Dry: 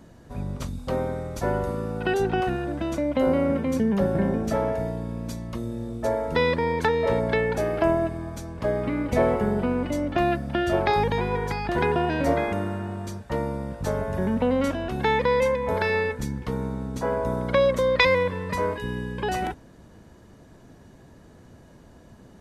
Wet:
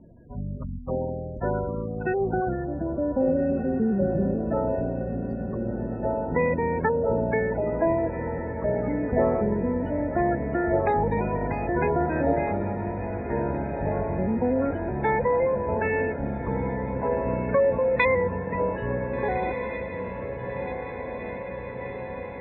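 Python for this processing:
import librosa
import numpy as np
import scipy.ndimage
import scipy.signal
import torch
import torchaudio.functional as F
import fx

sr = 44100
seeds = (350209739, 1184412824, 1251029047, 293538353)

y = fx.spec_gate(x, sr, threshold_db=-15, keep='strong')
y = scipy.signal.sosfilt(scipy.signal.butter(4, 2500.0, 'lowpass', fs=sr, output='sos'), y)
y = fx.echo_diffused(y, sr, ms=1539, feedback_pct=72, wet_db=-9.0)
y = y * 10.0 ** (-1.0 / 20.0)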